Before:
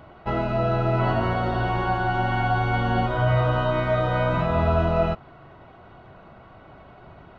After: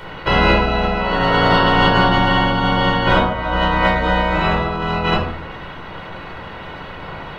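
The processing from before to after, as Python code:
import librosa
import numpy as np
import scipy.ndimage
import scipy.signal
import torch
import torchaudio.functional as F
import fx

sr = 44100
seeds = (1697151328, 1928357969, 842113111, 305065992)

y = fx.spec_clip(x, sr, under_db=19)
y = fx.over_compress(y, sr, threshold_db=-26.0, ratio=-0.5)
y = fx.room_shoebox(y, sr, seeds[0], volume_m3=760.0, walls='furnished', distance_m=4.7)
y = y * librosa.db_to_amplitude(3.5)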